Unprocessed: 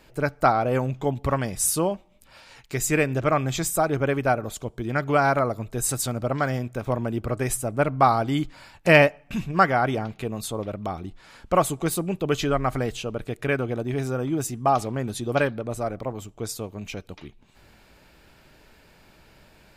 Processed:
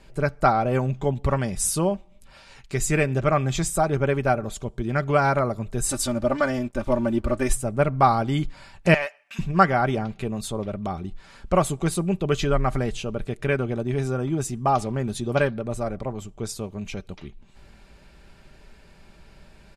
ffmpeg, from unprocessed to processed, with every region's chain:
ffmpeg -i in.wav -filter_complex "[0:a]asettb=1/sr,asplit=3[link_01][link_02][link_03];[link_01]atrim=end=5.894[link_04];[link_02]atrim=start=5.89:end=7.53,asetpts=PTS-STARTPTS,afade=type=in:duration=0.004:curve=qsin,afade=type=out:start_time=1.636:duration=0.004:curve=qsin,aecho=1:1:3.4:0.92,atrim=end_sample=72324,aeval=exprs='sgn(val(0))*max(abs(val(0))-0.00299,0)':channel_layout=same[link_05];[link_03]atrim=start=7.526[link_06];[link_04][link_05]acrossfade=duration=0.004:curve1=hsin:curve2=qsin[link_07];[link_07][link_06]acrossfade=duration=0.004:curve1=qsin:curve2=hsin,asettb=1/sr,asplit=3[link_08][link_09][link_10];[link_08]atrim=end=8.944[link_11];[link_09]atrim=start=8.94:end=9.39,asetpts=PTS-STARTPTS,afade=type=in:duration=0.004:curve=qsin,afade=type=out:start_time=0.446:duration=0.004:curve=qsin,highpass=1200,deesser=0.8[link_12];[link_10]atrim=start=9.386[link_13];[link_11][link_12]acrossfade=duration=0.004:curve1=hsin:curve2=qsin[link_14];[link_14][link_13]acrossfade=duration=0.004:curve1=qsin:curve2=hsin,lowpass=frequency=11000:width=0.5412,lowpass=frequency=11000:width=1.3066,lowshelf=frequency=130:gain=9.5,aecho=1:1:5.1:0.35,volume=-1dB" out.wav

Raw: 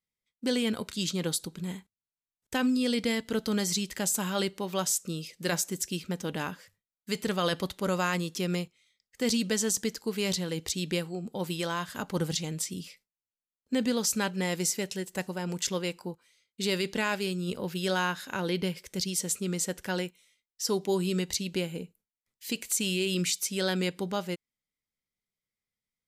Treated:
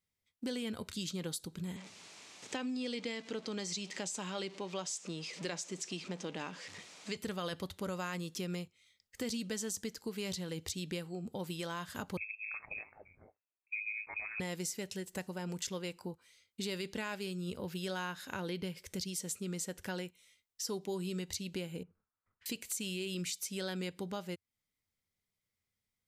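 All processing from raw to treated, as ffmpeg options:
ffmpeg -i in.wav -filter_complex "[0:a]asettb=1/sr,asplit=3[link_01][link_02][link_03];[link_01]atrim=end=1.764[link_04];[link_02]atrim=start=1.76:end=7.17,asetpts=PTS-STARTPTS,afade=type=in:duration=0.004:curve=qsin,afade=type=out:start_time=5.406:duration=0.004:curve=qsin,aeval=exprs='val(0)+0.5*0.00944*sgn(val(0))':channel_layout=same,highpass=frequency=180:width=0.5412,highpass=frequency=180:width=1.3066,equalizer=frequency=220:width_type=q:width=4:gain=-5,equalizer=frequency=1500:width_type=q:width=4:gain=-4,equalizer=frequency=2400:width_type=q:width=4:gain=3,lowpass=frequency=7400:width=0.5412,lowpass=frequency=7400:width=1.3066[link_05];[link_03]atrim=start=7.166[link_06];[link_04][link_05]acrossfade=duration=0.004:curve1=hsin:curve2=qsin[link_07];[link_07][link_06]acrossfade=duration=0.004:curve1=qsin:curve2=hsin,asettb=1/sr,asplit=3[link_08][link_09][link_10];[link_08]atrim=end=12.174[link_11];[link_09]atrim=start=12.17:end=14.4,asetpts=PTS-STARTPTS,afade=type=in:duration=0.004:curve=qsin,afade=type=out:start_time=2.226:duration=0.004:curve=qsin,aeval=exprs='val(0)*sin(2*PI*53*n/s)':channel_layout=same,acrossover=split=630[link_12][link_13];[link_13]adelay=340[link_14];[link_12][link_14]amix=inputs=2:normalize=0,atrim=end_sample=98343,lowpass=frequency=2300:width_type=q:width=0.5098,lowpass=frequency=2300:width_type=q:width=0.6013,lowpass=frequency=2300:width_type=q:width=0.9,lowpass=frequency=2300:width_type=q:width=2.563,afreqshift=-2700[link_15];[link_10]atrim=start=14.396[link_16];[link_11][link_15]acrossfade=duration=0.004:curve1=hsin:curve2=qsin[link_17];[link_17][link_16]acrossfade=duration=0.004:curve1=qsin:curve2=hsin,asettb=1/sr,asplit=3[link_18][link_19][link_20];[link_18]atrim=end=21.834[link_21];[link_19]atrim=start=21.83:end=22.46,asetpts=PTS-STARTPTS,afade=type=in:duration=0.004:curve=qsin,afade=type=out:start_time=0.626:duration=0.004:curve=qsin,acompressor=threshold=-49dB:ratio=6:attack=3.2:release=140:knee=1:detection=peak,lowpass=frequency=1300:width_type=q:width=3.6[link_22];[link_20]atrim=start=22.456[link_23];[link_21][link_22]acrossfade=duration=0.004:curve1=hsin:curve2=qsin[link_24];[link_24][link_23]acrossfade=duration=0.004:curve1=qsin:curve2=hsin,acompressor=threshold=-44dB:ratio=2.5,equalizer=frequency=89:width_type=o:width=0.55:gain=10.5,volume=2dB" out.wav

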